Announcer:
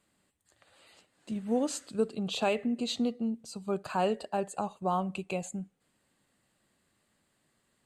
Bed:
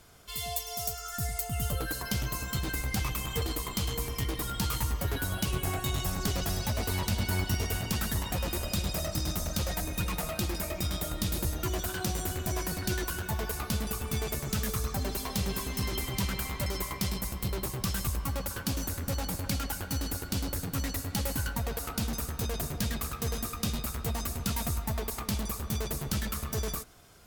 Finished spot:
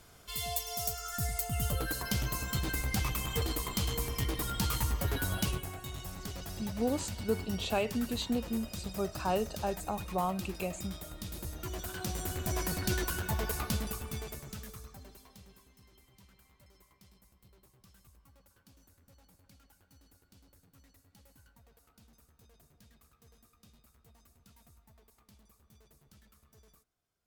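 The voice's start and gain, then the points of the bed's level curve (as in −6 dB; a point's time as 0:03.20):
5.30 s, −2.5 dB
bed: 0:05.48 −1 dB
0:05.69 −11 dB
0:11.29 −11 dB
0:12.66 −0.5 dB
0:13.64 −0.5 dB
0:15.82 −30 dB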